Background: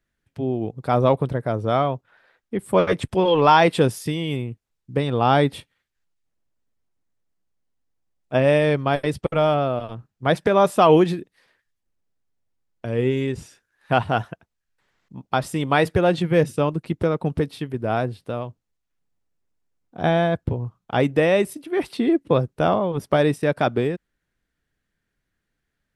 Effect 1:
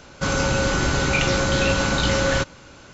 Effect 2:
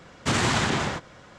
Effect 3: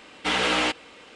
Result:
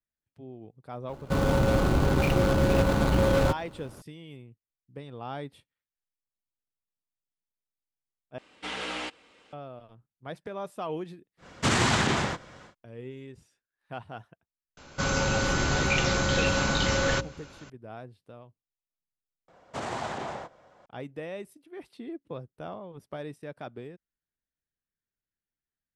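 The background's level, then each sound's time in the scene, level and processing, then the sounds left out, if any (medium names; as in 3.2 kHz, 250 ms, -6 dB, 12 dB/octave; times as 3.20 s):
background -20 dB
1.09 s: add 1 -0.5 dB + median filter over 25 samples
8.38 s: replace with 3 -11.5 dB
11.37 s: add 2 -0.5 dB, fades 0.10 s
14.77 s: add 1 -4.5 dB + hum notches 60/120/180/240/300/360/420/480/540/600 Hz
19.48 s: replace with 2 -17 dB + peaking EQ 680 Hz +14.5 dB 1.5 oct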